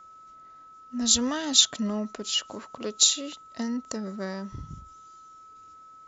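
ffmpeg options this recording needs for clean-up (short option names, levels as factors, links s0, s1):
-af "bandreject=f=1300:w=30"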